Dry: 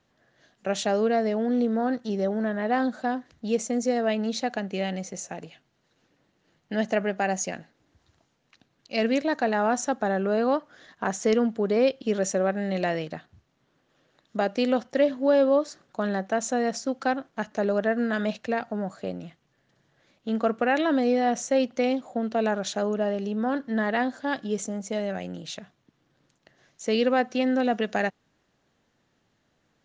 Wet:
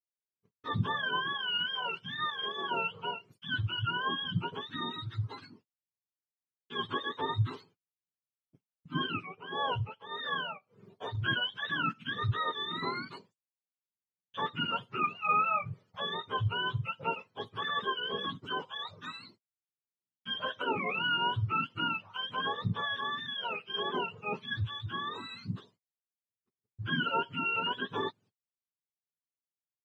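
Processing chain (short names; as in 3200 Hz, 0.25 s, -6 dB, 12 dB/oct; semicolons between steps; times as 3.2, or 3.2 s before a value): spectrum mirrored in octaves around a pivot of 840 Hz; gate -53 dBFS, range -41 dB; 9.06–11.15 tremolo 1.6 Hz, depth 82%; gain -6 dB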